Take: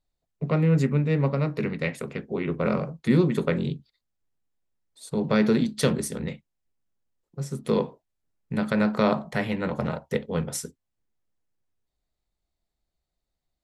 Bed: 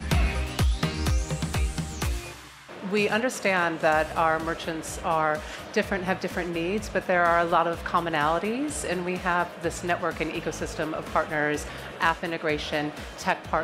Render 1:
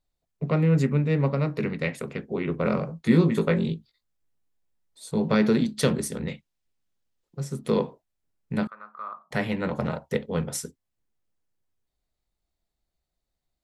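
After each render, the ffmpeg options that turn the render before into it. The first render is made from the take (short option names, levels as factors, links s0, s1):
-filter_complex "[0:a]asettb=1/sr,asplit=3[s0][s1][s2];[s0]atrim=end=2.884[s3];[s1]atrim=start=2.88:end=5.35,asetpts=PTS-STARTPTS,afade=t=in:d=0.004:c=qsin,afade=t=out:st=2.466:d=0.004:c=qsin,asplit=2[s4][s5];[s5]adelay=18,volume=0.531[s6];[s4][s6]amix=inputs=2:normalize=0,atrim=end_sample=108927[s7];[s2]atrim=start=5.346[s8];[s3][s7]acrossfade=d=0.004:c1=hsin:c2=qsin[s9];[s9][s8]acrossfade=d=0.004:c1=qsin:c2=hsin,asettb=1/sr,asplit=3[s10][s11][s12];[s10]atrim=end=6.294[s13];[s11]atrim=start=6.29:end=7.41,asetpts=PTS-STARTPTS,afade=t=in:d=0.004:c=qsin,afade=t=out:st=1.116:d=0.004:c=qsin,equalizer=f=3800:t=o:w=2:g=5.5[s14];[s12]atrim=start=7.406[s15];[s13][s14]acrossfade=d=0.004:c1=hsin:c2=qsin[s16];[s16][s15]acrossfade=d=0.004:c1=qsin:c2=hsin,asettb=1/sr,asplit=3[s17][s18][s19];[s17]atrim=end=8.674[s20];[s18]atrim=start=8.67:end=9.31,asetpts=PTS-STARTPTS,afade=t=in:d=0.004:c=qsin,afade=t=out:st=0.636:d=0.004:c=qsin,bandpass=f=1200:t=q:w=14[s21];[s19]atrim=start=9.306[s22];[s20][s21]acrossfade=d=0.004:c1=hsin:c2=qsin[s23];[s23][s22]acrossfade=d=0.004:c1=qsin:c2=hsin"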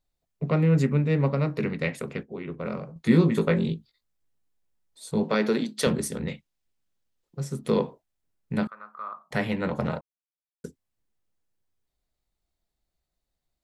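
-filter_complex "[0:a]asettb=1/sr,asplit=3[s0][s1][s2];[s0]atrim=end=5.234[s3];[s1]atrim=start=5.23:end=5.87,asetpts=PTS-STARTPTS,afade=t=in:d=0.004:c=qsin,afade=t=out:st=0.636:d=0.004:c=qsin,highpass=280[s4];[s2]atrim=start=5.866[s5];[s3][s4]acrossfade=d=0.004:c1=hsin:c2=qsin[s6];[s6][s5]acrossfade=d=0.004:c1=qsin:c2=hsin,asplit=5[s7][s8][s9][s10][s11];[s7]atrim=end=2.232[s12];[s8]atrim=start=2.228:end=2.962,asetpts=PTS-STARTPTS,volume=0.422[s13];[s9]atrim=start=2.958:end=10.01,asetpts=PTS-STARTPTS,afade=t=out:st=7.048:d=0.004:c=hsin[s14];[s10]atrim=start=10.01:end=10.64,asetpts=PTS-STARTPTS,volume=0[s15];[s11]atrim=start=10.64,asetpts=PTS-STARTPTS,afade=t=in:d=0.004:c=hsin[s16];[s12][s13]acrossfade=d=0.004:c1=hsin:c2=hsin[s17];[s14][s15][s16]concat=n=3:v=0:a=1[s18];[s17][s18]acrossfade=d=0.004:c1=hsin:c2=hsin"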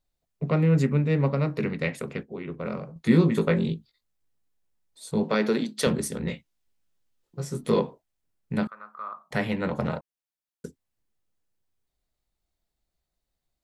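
-filter_complex "[0:a]asettb=1/sr,asplit=3[s0][s1][s2];[s0]atrim=end=6.234[s3];[s1]atrim=start=6.23:end=7.8,asetpts=PTS-STARTPTS,afade=t=in:d=0.004:c=qsin,afade=t=out:st=1.566:d=0.004:c=qsin,asplit=2[s4][s5];[s5]adelay=17,volume=0.708[s6];[s4][s6]amix=inputs=2:normalize=0,atrim=end_sample=69237[s7];[s2]atrim=start=7.796[s8];[s3][s7]acrossfade=d=0.004:c1=hsin:c2=qsin[s9];[s9][s8]acrossfade=d=0.004:c1=qsin:c2=hsin"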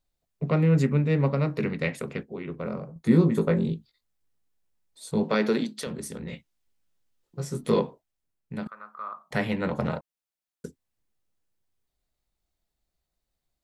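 -filter_complex "[0:a]asettb=1/sr,asplit=3[s0][s1][s2];[s0]atrim=end=2.654[s3];[s1]atrim=start=2.65:end=3.73,asetpts=PTS-STARTPTS,afade=t=in:d=0.004:c=qsin,afade=t=out:st=1.076:d=0.004:c=qsin,equalizer=f=2900:w=0.7:g=-8[s4];[s2]atrim=start=3.726[s5];[s3][s4]acrossfade=d=0.004:c1=hsin:c2=qsin[s6];[s6][s5]acrossfade=d=0.004:c1=qsin:c2=hsin,asettb=1/sr,asplit=3[s7][s8][s9];[s7]atrim=end=5.674[s10];[s8]atrim=start=5.67:end=6.33,asetpts=PTS-STARTPTS,afade=t=in:d=0.004:c=qsin,afade=t=out:st=0.656:d=0.004:c=qsin,acompressor=threshold=0.0178:ratio=2.5:attack=3.2:release=140:knee=1:detection=peak[s11];[s9]atrim=start=6.326[s12];[s10][s11]acrossfade=d=0.004:c1=hsin:c2=qsin[s13];[s13][s12]acrossfade=d=0.004:c1=qsin:c2=hsin,asplit=2[s14][s15];[s14]atrim=end=8.66,asetpts=PTS-STARTPTS,afade=t=out:st=7.73:d=0.93:silence=0.375837[s16];[s15]atrim=start=8.66,asetpts=PTS-STARTPTS,afade=t=in:d=0.004:c=hsin:silence=0.375837[s17];[s16][s17]concat=n=2:v=0:a=1"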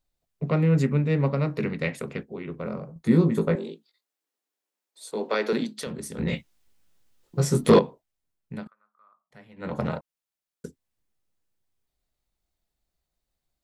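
-filter_complex "[0:a]asettb=1/sr,asplit=3[s0][s1][s2];[s0]atrim=end=3.554[s3];[s1]atrim=start=3.55:end=5.53,asetpts=PTS-STARTPTS,afade=t=in:d=0.004:c=qsin,afade=t=out:st=1.976:d=0.004:c=qsin,highpass=f=300:w=0.5412,highpass=f=300:w=1.3066[s4];[s2]atrim=start=5.526[s5];[s3][s4]acrossfade=d=0.004:c1=hsin:c2=qsin[s6];[s6][s5]acrossfade=d=0.004:c1=qsin:c2=hsin,asettb=1/sr,asplit=3[s7][s8][s9];[s7]atrim=end=6.184[s10];[s8]atrim=start=6.18:end=7.79,asetpts=PTS-STARTPTS,afade=t=in:d=0.004:c=qsin,afade=t=out:st=1.606:d=0.004:c=qsin,aeval=exprs='0.376*sin(PI/2*2*val(0)/0.376)':c=same[s11];[s9]atrim=start=7.786[s12];[s10][s11]acrossfade=d=0.004:c1=hsin:c2=qsin[s13];[s13][s12]acrossfade=d=0.004:c1=qsin:c2=hsin,asplit=3[s14][s15][s16];[s14]atrim=end=8.74,asetpts=PTS-STARTPTS,afade=t=out:st=8.54:d=0.2:silence=0.0668344[s17];[s15]atrim=start=8.74:end=9.56,asetpts=PTS-STARTPTS,volume=0.0668[s18];[s16]atrim=start=9.56,asetpts=PTS-STARTPTS,afade=t=in:d=0.2:silence=0.0668344[s19];[s17][s18][s19]concat=n=3:v=0:a=1"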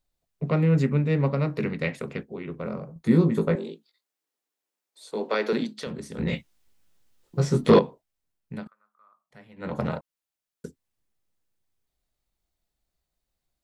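-filter_complex "[0:a]acrossover=split=5900[s0][s1];[s1]acompressor=threshold=0.00224:ratio=4:attack=1:release=60[s2];[s0][s2]amix=inputs=2:normalize=0"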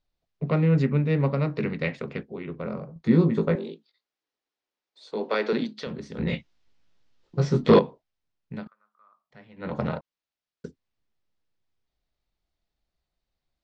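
-af "lowpass=f=5400:w=0.5412,lowpass=f=5400:w=1.3066"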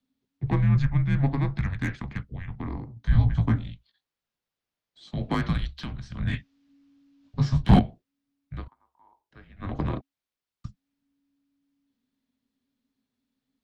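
-filter_complex "[0:a]acrossover=split=240|900|1400[s0][s1][s2][s3];[s3]asoftclip=type=tanh:threshold=0.0422[s4];[s0][s1][s2][s4]amix=inputs=4:normalize=0,afreqshift=-280"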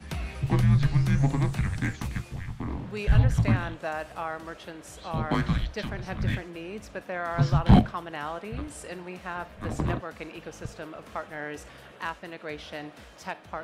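-filter_complex "[1:a]volume=0.299[s0];[0:a][s0]amix=inputs=2:normalize=0"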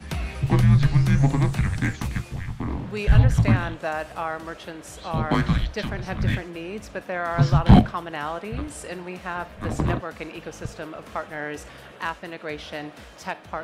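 -af "volume=1.68,alimiter=limit=0.891:level=0:latency=1"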